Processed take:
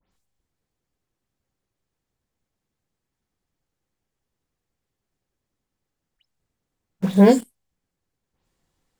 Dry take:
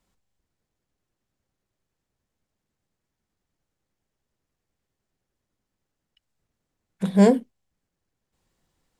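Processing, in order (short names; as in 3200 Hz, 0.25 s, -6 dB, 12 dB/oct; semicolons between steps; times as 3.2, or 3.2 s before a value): spectral delay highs late, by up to 0.114 s; in parallel at -6 dB: bit-crush 6-bit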